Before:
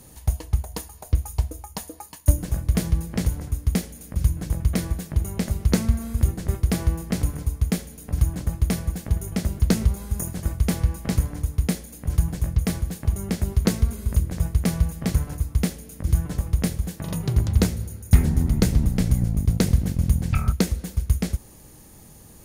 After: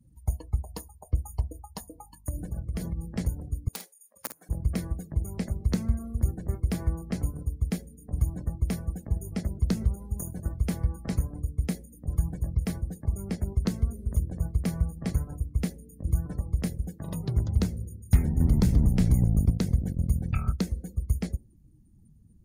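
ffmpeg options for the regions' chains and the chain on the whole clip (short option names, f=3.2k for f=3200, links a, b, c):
-filter_complex "[0:a]asettb=1/sr,asplit=3[a][b][c];[a]atrim=end=1.804[d];[b]atrim=start=1.8:end=3.18,asetpts=PTS-STARTPTS,afade=t=in:d=0.004:c=qsin,afade=t=out:st=1.376:d=0.004:c=qsin,bandreject=f=47.97:t=h:w=4,bandreject=f=95.94:t=h:w=4,bandreject=f=143.91:t=h:w=4,bandreject=f=191.88:t=h:w=4,bandreject=f=239.85:t=h:w=4,bandreject=f=287.82:t=h:w=4,bandreject=f=335.79:t=h:w=4,bandreject=f=383.76:t=h:w=4,bandreject=f=431.73:t=h:w=4,bandreject=f=479.7:t=h:w=4,bandreject=f=527.67:t=h:w=4,bandreject=f=575.64:t=h:w=4,bandreject=f=623.61:t=h:w=4,bandreject=f=671.58:t=h:w=4,bandreject=f=719.55:t=h:w=4,bandreject=f=767.52:t=h:w=4,bandreject=f=815.49:t=h:w=4,bandreject=f=863.46:t=h:w=4,bandreject=f=911.43:t=h:w=4,bandreject=f=959.4:t=h:w=4,bandreject=f=1.00737k:t=h:w=4,bandreject=f=1.05534k:t=h:w=4,bandreject=f=1.10331k:t=h:w=4,acompressor=threshold=-21dB:ratio=6:attack=3.2:release=140:knee=1:detection=peak,aeval=exprs='val(0)+0.00398*(sin(2*PI*50*n/s)+sin(2*PI*2*50*n/s)/2+sin(2*PI*3*50*n/s)/3+sin(2*PI*4*50*n/s)/4+sin(2*PI*5*50*n/s)/5)':c=same[e];[c]atrim=start=3.176[f];[d][e]acrossfade=d=0.004:c1=hsin:c2=qsin[g];[g][f]acrossfade=d=0.004:c1=qsin:c2=hsin,asettb=1/sr,asplit=3[h][i][j];[h]atrim=end=3.684[k];[i]atrim=start=3.68:end=4.49,asetpts=PTS-STARTPTS,afade=t=in:d=0.004:c=qsin,afade=t=out:st=0.806:d=0.004:c=qsin,aeval=exprs='(mod(3.35*val(0)+1,2)-1)/3.35':c=same,highpass=680,asplit=2[l][m];[m]adelay=50,volume=-7dB[n];[l][n]amix=inputs=2:normalize=0,atrim=end_sample=35721[o];[j]atrim=start=4.486[p];[k][o]acrossfade=d=0.004:c1=hsin:c2=qsin[q];[q][p]acrossfade=d=0.004:c1=qsin:c2=hsin,asettb=1/sr,asplit=3[r][s][t];[r]atrim=end=18.404[u];[s]atrim=start=18.4:end=19.5,asetpts=PTS-STARTPTS,afade=t=in:d=0.004:c=qsin,afade=t=out:st=1.096:d=0.004:c=qsin,acontrast=51,asoftclip=type=hard:threshold=-8.5dB[v];[t]atrim=start=19.496[w];[u][v]acrossfade=d=0.004:c1=hsin:c2=qsin[x];[x][w]acrossfade=d=0.004:c1=qsin:c2=hsin,afftdn=nr=29:nf=-40,acrossover=split=280[y][z];[z]acompressor=threshold=-28dB:ratio=6[aa];[y][aa]amix=inputs=2:normalize=0,volume=-5.5dB"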